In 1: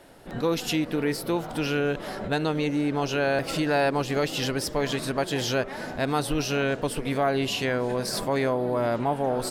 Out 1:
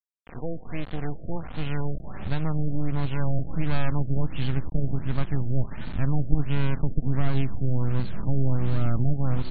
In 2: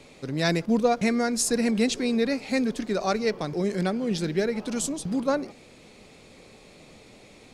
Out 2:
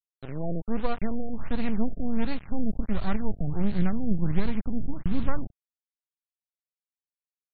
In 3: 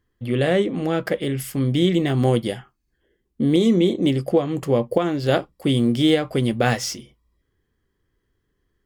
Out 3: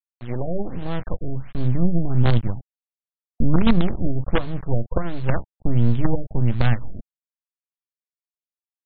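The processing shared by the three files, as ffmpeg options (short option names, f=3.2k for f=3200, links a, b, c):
-af "acrusher=bits=3:dc=4:mix=0:aa=0.000001,asubboost=boost=10:cutoff=160,afftfilt=real='re*lt(b*sr/1024,690*pow(4600/690,0.5+0.5*sin(2*PI*1.4*pts/sr)))':imag='im*lt(b*sr/1024,690*pow(4600/690,0.5+0.5*sin(2*PI*1.4*pts/sr)))':win_size=1024:overlap=0.75,volume=-4dB"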